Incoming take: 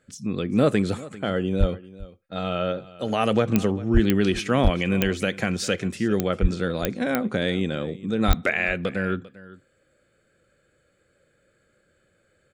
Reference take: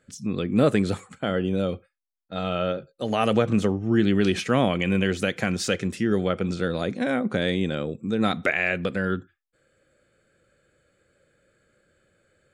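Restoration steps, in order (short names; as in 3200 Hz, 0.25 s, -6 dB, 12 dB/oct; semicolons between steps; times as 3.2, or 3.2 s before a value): clip repair -8.5 dBFS; de-click; de-plosive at 1.59/3.93/4.63/6.41/8.27; inverse comb 0.396 s -19 dB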